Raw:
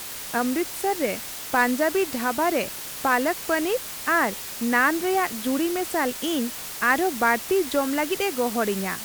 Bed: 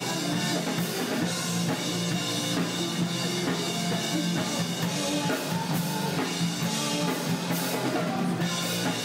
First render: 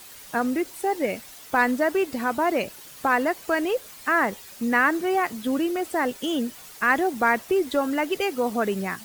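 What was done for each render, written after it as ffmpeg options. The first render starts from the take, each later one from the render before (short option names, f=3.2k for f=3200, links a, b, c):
-af "afftdn=nr=11:nf=-35"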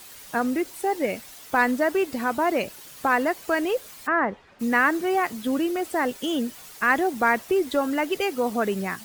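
-filter_complex "[0:a]asplit=3[a][b][c];[a]afade=t=out:st=4.06:d=0.02[d];[b]lowpass=1.8k,afade=t=in:st=4.06:d=0.02,afade=t=out:st=4.59:d=0.02[e];[c]afade=t=in:st=4.59:d=0.02[f];[d][e][f]amix=inputs=3:normalize=0"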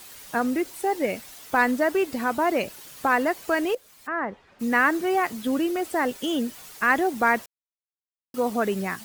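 -filter_complex "[0:a]asplit=4[a][b][c][d];[a]atrim=end=3.75,asetpts=PTS-STARTPTS,afade=t=out:st=3.746:d=0.004:c=hsin:silence=0.199526[e];[b]atrim=start=3.75:end=7.46,asetpts=PTS-STARTPTS,afade=t=in:d=1.06:silence=0.199526,afade=t=out:st=3.706:d=0.004:c=hsin[f];[c]atrim=start=7.46:end=8.34,asetpts=PTS-STARTPTS,volume=0[g];[d]atrim=start=8.34,asetpts=PTS-STARTPTS,afade=t=in:d=0.004:c=hsin[h];[e][f][g][h]concat=n=4:v=0:a=1"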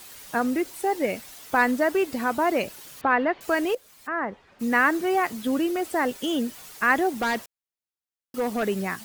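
-filter_complex "[0:a]asettb=1/sr,asplit=3[a][b][c];[a]atrim=end=3.014[d];[b]atrim=start=3.01:end=3.41,asetpts=PTS-STARTPTS,afade=t=in:d=0.004:c=qsin,afade=t=out:st=0.396:d=0.004:c=qsin,lowpass=f=3.4k:w=0.5412,lowpass=f=3.4k:w=1.3066[e];[c]atrim=start=3.406[f];[d][e]acrossfade=d=0.004:c1=hsin:c2=qsin[g];[g][f]acrossfade=d=0.004:c1=qsin:c2=hsin,asettb=1/sr,asplit=3[h][i][j];[h]atrim=end=7.154[k];[i]atrim=start=7.15:end=8.63,asetpts=PTS-STARTPTS,afade=t=in:d=0.004:c=qsin,afade=t=out:st=1.476:d=0.004:c=qsin,asoftclip=type=hard:threshold=-21dB[l];[j]atrim=start=8.626[m];[k][l]acrossfade=d=0.004:c1=hsin:c2=qsin[n];[n][m]acrossfade=d=0.004:c1=qsin:c2=hsin"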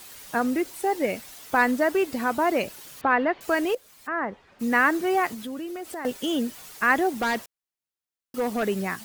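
-filter_complex "[0:a]asettb=1/sr,asplit=3[a][b][c];[a]atrim=end=5.344[d];[b]atrim=start=5.34:end=6.05,asetpts=PTS-STARTPTS,afade=t=in:d=0.004:c=qsin,afade=t=out:st=0.706:d=0.004:c=qsin,acompressor=threshold=-34dB:ratio=3:attack=3.2:release=140:knee=1:detection=peak[e];[c]atrim=start=6.046[f];[d][e]acrossfade=d=0.004:c1=hsin:c2=qsin[g];[g][f]acrossfade=d=0.004:c1=qsin:c2=hsin"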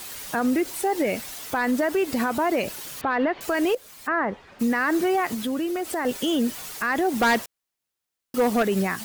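-af "acontrast=88,alimiter=limit=-15.5dB:level=0:latency=1:release=73"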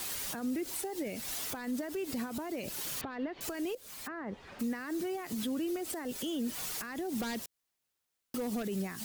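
-filter_complex "[0:a]alimiter=level_in=2.5dB:limit=-24dB:level=0:latency=1:release=179,volume=-2.5dB,acrossover=split=400|3000[a][b][c];[b]acompressor=threshold=-47dB:ratio=2.5[d];[a][d][c]amix=inputs=3:normalize=0"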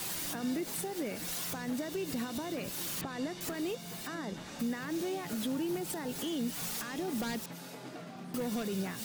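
-filter_complex "[1:a]volume=-18dB[a];[0:a][a]amix=inputs=2:normalize=0"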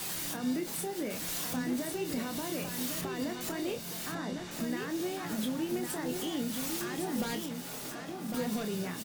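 -filter_complex "[0:a]asplit=2[a][b];[b]adelay=28,volume=-7.5dB[c];[a][c]amix=inputs=2:normalize=0,aecho=1:1:1104:0.531"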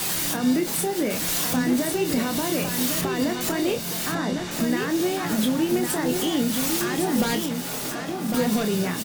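-af "volume=11dB"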